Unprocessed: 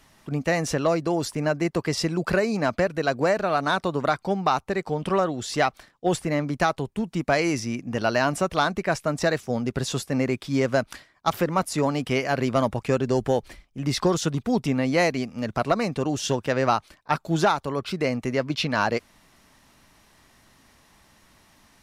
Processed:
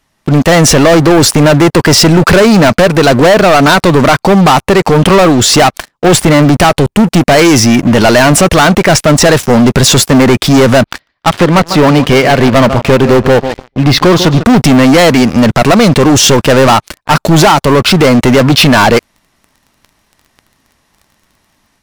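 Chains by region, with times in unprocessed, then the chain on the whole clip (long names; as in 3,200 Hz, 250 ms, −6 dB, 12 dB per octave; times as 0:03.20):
0:10.84–0:14.45: low-pass filter 4,800 Hz 24 dB per octave + repeating echo 147 ms, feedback 31%, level −15.5 dB + expander for the loud parts, over −31 dBFS
whole clip: automatic gain control gain up to 4.5 dB; leveller curve on the samples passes 5; boost into a limiter +7.5 dB; level −1 dB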